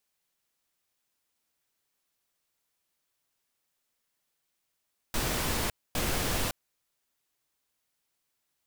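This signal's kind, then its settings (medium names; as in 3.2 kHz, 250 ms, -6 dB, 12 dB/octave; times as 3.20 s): noise bursts pink, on 0.56 s, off 0.25 s, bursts 2, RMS -29.5 dBFS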